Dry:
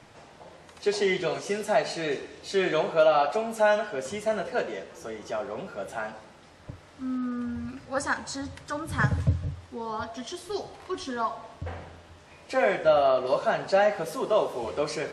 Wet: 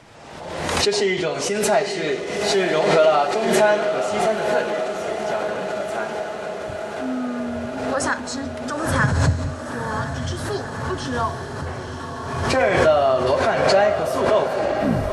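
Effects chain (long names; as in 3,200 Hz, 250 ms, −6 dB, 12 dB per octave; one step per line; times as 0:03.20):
turntable brake at the end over 0.54 s
feedback delay with all-pass diffusion 950 ms, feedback 72%, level −7 dB
background raised ahead of every attack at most 39 dB per second
level +4 dB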